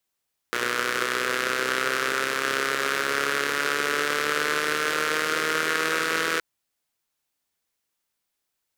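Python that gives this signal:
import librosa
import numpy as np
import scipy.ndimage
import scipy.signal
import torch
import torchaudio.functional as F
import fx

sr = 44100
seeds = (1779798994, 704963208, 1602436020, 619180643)

y = fx.engine_four_rev(sr, seeds[0], length_s=5.87, rpm=3600, resonances_hz=(450.0, 1400.0), end_rpm=4900)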